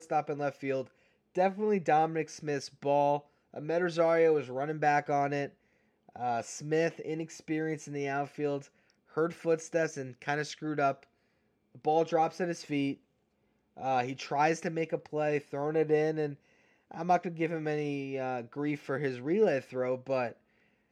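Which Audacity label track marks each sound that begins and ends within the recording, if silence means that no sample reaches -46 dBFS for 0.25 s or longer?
1.350000	3.200000	sound
3.540000	5.490000	sound
6.090000	8.650000	sound
9.150000	11.030000	sound
11.750000	12.940000	sound
13.770000	16.350000	sound
16.910000	20.320000	sound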